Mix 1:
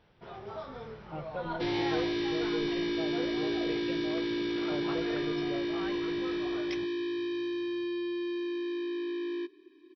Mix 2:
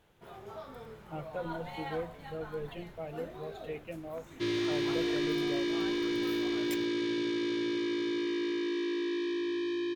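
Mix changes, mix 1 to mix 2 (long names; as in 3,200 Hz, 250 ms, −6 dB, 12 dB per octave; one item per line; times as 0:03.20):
first sound −4.0 dB
second sound: entry +2.80 s
master: remove linear-phase brick-wall low-pass 5,900 Hz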